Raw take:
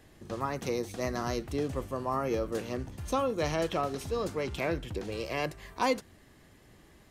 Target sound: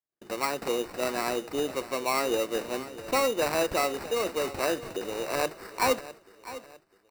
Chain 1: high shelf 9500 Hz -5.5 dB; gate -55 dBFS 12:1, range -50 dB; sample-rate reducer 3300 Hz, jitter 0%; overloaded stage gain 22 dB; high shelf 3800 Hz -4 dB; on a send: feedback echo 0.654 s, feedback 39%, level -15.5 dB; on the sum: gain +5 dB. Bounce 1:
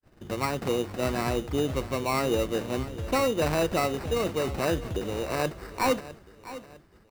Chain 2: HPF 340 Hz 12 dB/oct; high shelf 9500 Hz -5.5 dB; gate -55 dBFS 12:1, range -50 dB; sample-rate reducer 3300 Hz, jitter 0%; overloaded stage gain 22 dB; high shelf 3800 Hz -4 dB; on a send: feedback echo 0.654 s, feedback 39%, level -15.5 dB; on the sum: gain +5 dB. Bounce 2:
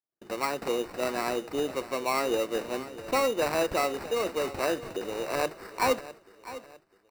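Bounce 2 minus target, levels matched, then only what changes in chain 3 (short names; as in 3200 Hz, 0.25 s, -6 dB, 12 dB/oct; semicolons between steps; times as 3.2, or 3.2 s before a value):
8000 Hz band -2.5 dB
remove: second high shelf 3800 Hz -4 dB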